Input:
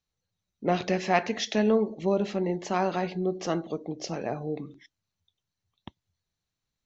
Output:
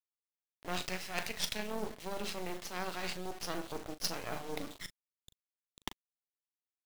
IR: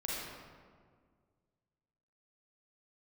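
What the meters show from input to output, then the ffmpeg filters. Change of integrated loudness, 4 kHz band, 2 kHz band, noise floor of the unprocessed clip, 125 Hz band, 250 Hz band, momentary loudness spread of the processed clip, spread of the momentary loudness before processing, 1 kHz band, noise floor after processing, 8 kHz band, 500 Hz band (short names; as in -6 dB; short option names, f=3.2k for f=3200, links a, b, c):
-11.5 dB, -1.5 dB, -6.0 dB, under -85 dBFS, -14.0 dB, -15.5 dB, 10 LU, 10 LU, -11.5 dB, under -85 dBFS, n/a, -15.0 dB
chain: -filter_complex "[0:a]highpass=170,tiltshelf=f=850:g=-6.5,areverse,acompressor=threshold=-40dB:ratio=10,areverse,lowpass=f=5.2k:t=q:w=1.8,acrusher=bits=6:dc=4:mix=0:aa=0.000001,tremolo=f=180:d=0.462,volume=30dB,asoftclip=hard,volume=-30dB,asplit=2[a][b];[b]adelay=39,volume=-12.5dB[c];[a][c]amix=inputs=2:normalize=0,volume=9dB"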